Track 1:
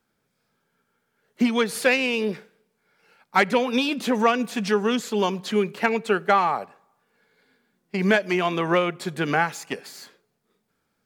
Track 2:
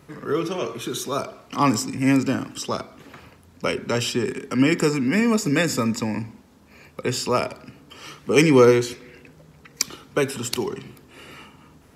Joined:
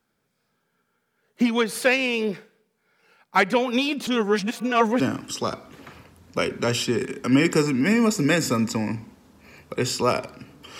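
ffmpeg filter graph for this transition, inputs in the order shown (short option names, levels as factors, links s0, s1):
-filter_complex "[0:a]apad=whole_dur=10.79,atrim=end=10.79,asplit=2[s0][s1];[s0]atrim=end=4.072[s2];[s1]atrim=start=4.068:end=5.002,asetpts=PTS-STARTPTS,areverse[s3];[1:a]atrim=start=2.268:end=8.06[s4];[s2][s3]acrossfade=d=0.004:c1=hsin:c2=hsin[s5];[s5][s4]acrossfade=d=0.004:c1=hsin:c2=hsin"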